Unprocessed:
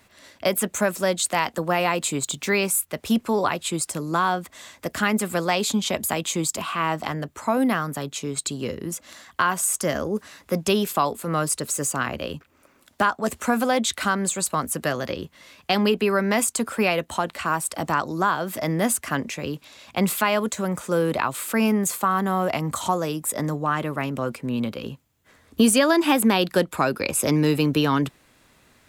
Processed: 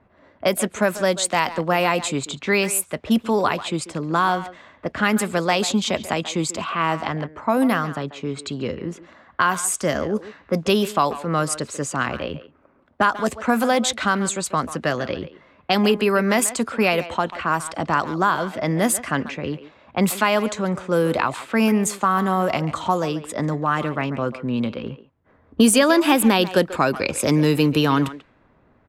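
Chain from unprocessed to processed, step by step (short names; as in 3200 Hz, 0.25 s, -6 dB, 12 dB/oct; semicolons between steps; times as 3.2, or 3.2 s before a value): low-pass opened by the level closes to 1000 Hz, open at -17.5 dBFS; speakerphone echo 0.14 s, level -13 dB; gain +2.5 dB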